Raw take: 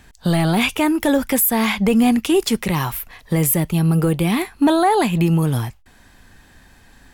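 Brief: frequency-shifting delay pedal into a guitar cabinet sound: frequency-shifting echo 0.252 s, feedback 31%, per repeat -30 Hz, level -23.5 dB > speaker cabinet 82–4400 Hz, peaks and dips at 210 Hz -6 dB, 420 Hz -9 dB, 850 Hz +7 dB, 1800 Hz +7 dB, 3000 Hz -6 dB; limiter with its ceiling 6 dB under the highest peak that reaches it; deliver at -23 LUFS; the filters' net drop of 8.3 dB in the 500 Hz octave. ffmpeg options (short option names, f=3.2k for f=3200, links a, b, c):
-filter_complex "[0:a]equalizer=f=500:t=o:g=-8.5,alimiter=limit=-14dB:level=0:latency=1,asplit=3[a][b][c];[b]adelay=252,afreqshift=-30,volume=-23.5dB[d];[c]adelay=504,afreqshift=-60,volume=-33.7dB[e];[a][d][e]amix=inputs=3:normalize=0,highpass=82,equalizer=f=210:t=q:w=4:g=-6,equalizer=f=420:t=q:w=4:g=-9,equalizer=f=850:t=q:w=4:g=7,equalizer=f=1.8k:t=q:w=4:g=7,equalizer=f=3k:t=q:w=4:g=-6,lowpass=f=4.4k:w=0.5412,lowpass=f=4.4k:w=1.3066,volume=0.5dB"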